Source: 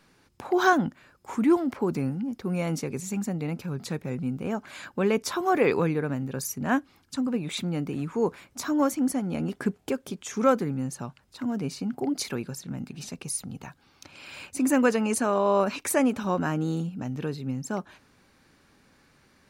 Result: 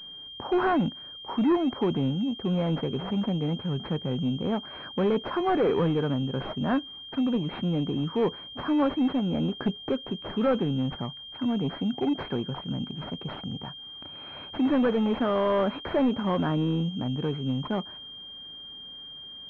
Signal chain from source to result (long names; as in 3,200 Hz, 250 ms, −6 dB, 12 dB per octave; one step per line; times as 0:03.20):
soft clipping −22 dBFS, distortion −11 dB
switching amplifier with a slow clock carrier 3,200 Hz
level +3.5 dB